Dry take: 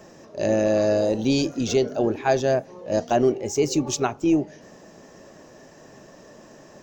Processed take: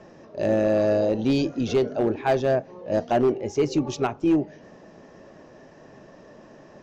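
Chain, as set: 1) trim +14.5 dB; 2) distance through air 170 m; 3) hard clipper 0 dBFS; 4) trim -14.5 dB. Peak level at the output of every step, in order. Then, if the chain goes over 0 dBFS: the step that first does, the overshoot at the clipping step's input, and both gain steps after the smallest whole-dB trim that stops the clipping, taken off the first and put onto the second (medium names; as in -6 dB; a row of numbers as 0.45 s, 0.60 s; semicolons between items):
+5.0 dBFS, +4.5 dBFS, 0.0 dBFS, -14.5 dBFS; step 1, 4.5 dB; step 1 +9.5 dB, step 4 -9.5 dB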